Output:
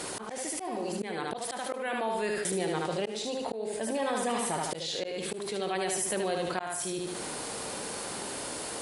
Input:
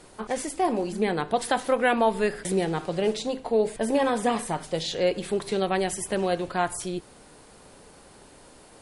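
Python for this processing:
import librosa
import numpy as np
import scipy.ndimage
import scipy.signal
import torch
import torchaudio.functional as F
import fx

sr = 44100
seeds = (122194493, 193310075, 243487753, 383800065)

y = fx.high_shelf(x, sr, hz=2900.0, db=4.5)
y = fx.echo_feedback(y, sr, ms=75, feedback_pct=36, wet_db=-5.0)
y = fx.auto_swell(y, sr, attack_ms=647.0)
y = fx.highpass(y, sr, hz=210.0, slope=6)
y = fx.env_flatten(y, sr, amount_pct=70)
y = y * librosa.db_to_amplitude(-8.0)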